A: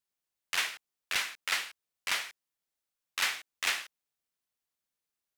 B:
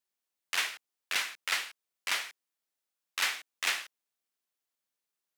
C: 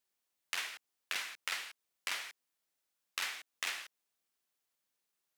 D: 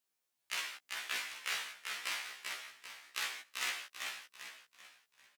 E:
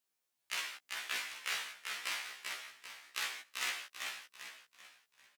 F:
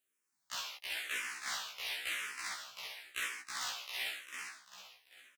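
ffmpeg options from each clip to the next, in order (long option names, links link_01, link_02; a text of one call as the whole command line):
ffmpeg -i in.wav -af "highpass=200" out.wav
ffmpeg -i in.wav -af "acompressor=threshold=-38dB:ratio=5,volume=2.5dB" out.wav
ffmpeg -i in.wav -filter_complex "[0:a]asplit=6[link_01][link_02][link_03][link_04][link_05][link_06];[link_02]adelay=392,afreqshift=-32,volume=-4dB[link_07];[link_03]adelay=784,afreqshift=-64,volume=-12dB[link_08];[link_04]adelay=1176,afreqshift=-96,volume=-19.9dB[link_09];[link_05]adelay=1568,afreqshift=-128,volume=-27.9dB[link_10];[link_06]adelay=1960,afreqshift=-160,volume=-35.8dB[link_11];[link_01][link_07][link_08][link_09][link_10][link_11]amix=inputs=6:normalize=0,afftfilt=real='re*1.73*eq(mod(b,3),0)':imag='im*1.73*eq(mod(b,3),0)':win_size=2048:overlap=0.75,volume=2dB" out.wav
ffmpeg -i in.wav -af anull out.wav
ffmpeg -i in.wav -filter_complex "[0:a]asoftclip=type=tanh:threshold=-30.5dB,asplit=2[link_01][link_02];[link_02]aecho=0:1:323:0.631[link_03];[link_01][link_03]amix=inputs=2:normalize=0,asplit=2[link_04][link_05];[link_05]afreqshift=-0.96[link_06];[link_04][link_06]amix=inputs=2:normalize=1,volume=3.5dB" out.wav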